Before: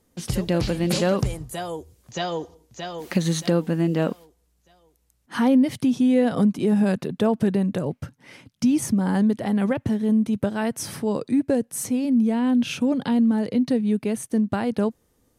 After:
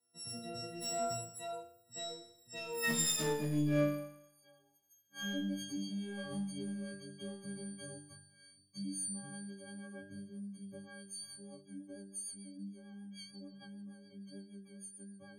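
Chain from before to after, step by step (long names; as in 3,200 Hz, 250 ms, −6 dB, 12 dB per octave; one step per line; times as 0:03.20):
every partial snapped to a pitch grid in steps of 6 semitones
source passing by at 0:03.28, 32 m/s, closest 19 metres
high-pass filter 110 Hz
in parallel at +2 dB: downward compressor, threshold −33 dBFS, peak gain reduction 17 dB
on the sum: soft clipping −18 dBFS, distortion −12 dB
resonators tuned to a chord G2 minor, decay 0.66 s
rotating-speaker cabinet horn 0.6 Hz, later 6.7 Hz, at 0:10.76
level +7 dB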